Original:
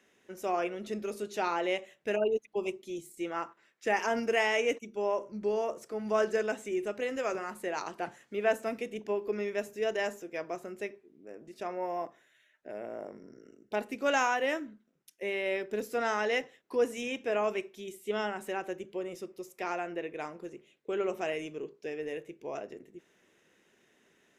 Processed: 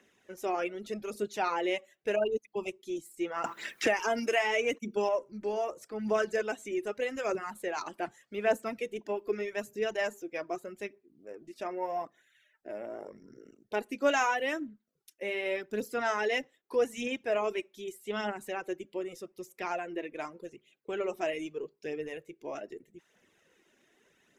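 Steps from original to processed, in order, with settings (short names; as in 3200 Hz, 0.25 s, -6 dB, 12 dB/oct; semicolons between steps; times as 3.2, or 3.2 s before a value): reverb removal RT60 0.51 s; phaser 0.82 Hz, delay 3.7 ms, feedback 41%; 3.44–5.09 three-band squash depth 100%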